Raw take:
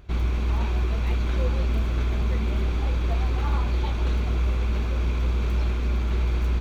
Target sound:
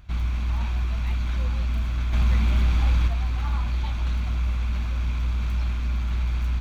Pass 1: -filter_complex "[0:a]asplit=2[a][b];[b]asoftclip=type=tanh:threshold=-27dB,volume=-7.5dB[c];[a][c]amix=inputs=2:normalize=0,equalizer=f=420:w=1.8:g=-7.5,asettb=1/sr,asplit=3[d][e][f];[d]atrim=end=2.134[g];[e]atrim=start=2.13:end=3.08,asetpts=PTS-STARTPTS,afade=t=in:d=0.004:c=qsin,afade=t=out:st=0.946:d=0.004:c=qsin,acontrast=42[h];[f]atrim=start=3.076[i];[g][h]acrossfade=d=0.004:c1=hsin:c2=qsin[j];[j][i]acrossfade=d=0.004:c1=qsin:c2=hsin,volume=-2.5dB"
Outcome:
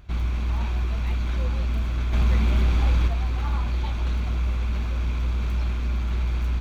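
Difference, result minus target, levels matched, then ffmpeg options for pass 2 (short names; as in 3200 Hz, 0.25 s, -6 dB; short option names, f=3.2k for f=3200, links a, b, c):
500 Hz band +5.5 dB
-filter_complex "[0:a]asplit=2[a][b];[b]asoftclip=type=tanh:threshold=-27dB,volume=-7.5dB[c];[a][c]amix=inputs=2:normalize=0,equalizer=f=420:w=1.8:g=-17,asettb=1/sr,asplit=3[d][e][f];[d]atrim=end=2.134[g];[e]atrim=start=2.13:end=3.08,asetpts=PTS-STARTPTS,afade=t=in:d=0.004:c=qsin,afade=t=out:st=0.946:d=0.004:c=qsin,acontrast=42[h];[f]atrim=start=3.076[i];[g][h]acrossfade=d=0.004:c1=hsin:c2=qsin[j];[j][i]acrossfade=d=0.004:c1=qsin:c2=hsin,volume=-2.5dB"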